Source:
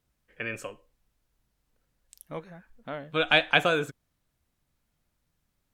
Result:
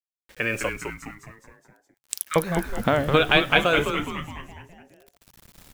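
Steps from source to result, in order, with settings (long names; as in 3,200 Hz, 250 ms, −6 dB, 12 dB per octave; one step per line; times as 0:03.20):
camcorder AGC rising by 9.3 dB per second
0:00.69–0:02.36: elliptic high-pass filter 1,300 Hz, stop band 40 dB
in parallel at 0 dB: downward compressor, threshold −31 dBFS, peak gain reduction 14.5 dB
on the sum: bit reduction 8 bits
echo with shifted repeats 208 ms, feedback 52%, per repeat −140 Hz, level −6 dB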